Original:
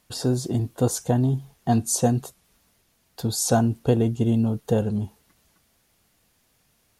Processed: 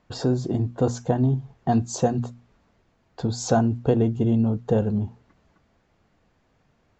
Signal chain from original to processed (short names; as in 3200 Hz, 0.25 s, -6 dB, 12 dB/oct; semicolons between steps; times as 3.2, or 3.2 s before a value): Chebyshev low-pass 7600 Hz, order 8; high shelf 3300 Hz -12 dB; notches 60/120/180/240 Hz; in parallel at +1 dB: compressor, threshold -33 dBFS, peak gain reduction 15.5 dB; on the sum: mismatched tape noise reduction decoder only